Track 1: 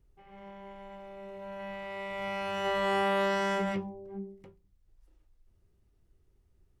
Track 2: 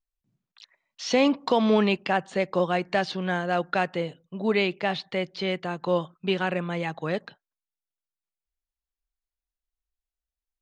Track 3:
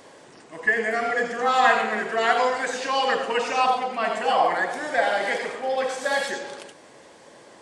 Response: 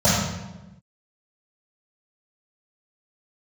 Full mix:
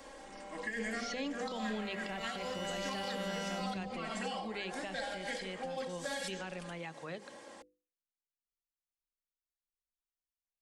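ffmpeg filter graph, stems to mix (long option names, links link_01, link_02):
-filter_complex "[0:a]volume=-3dB[link_01];[1:a]lowshelf=frequency=460:gain=-5,volume=-11dB,asplit=2[link_02][link_03];[2:a]volume=-5dB[link_04];[link_03]apad=whole_len=335947[link_05];[link_04][link_05]sidechaincompress=threshold=-44dB:ratio=8:attack=5.8:release=115[link_06];[link_01][link_06]amix=inputs=2:normalize=0,aecho=1:1:3.7:0.59,alimiter=limit=-19.5dB:level=0:latency=1:release=134,volume=0dB[link_07];[link_02][link_07]amix=inputs=2:normalize=0,bandreject=frequency=50:width_type=h:width=6,bandreject=frequency=100:width_type=h:width=6,bandreject=frequency=150:width_type=h:width=6,bandreject=frequency=200:width_type=h:width=6,bandreject=frequency=250:width_type=h:width=6,bandreject=frequency=300:width_type=h:width=6,bandreject=frequency=350:width_type=h:width=6,bandreject=frequency=400:width_type=h:width=6,bandreject=frequency=450:width_type=h:width=6,bandreject=frequency=500:width_type=h:width=6,acrossover=split=320|3000[link_08][link_09][link_10];[link_09]acompressor=threshold=-41dB:ratio=6[link_11];[link_08][link_11][link_10]amix=inputs=3:normalize=0"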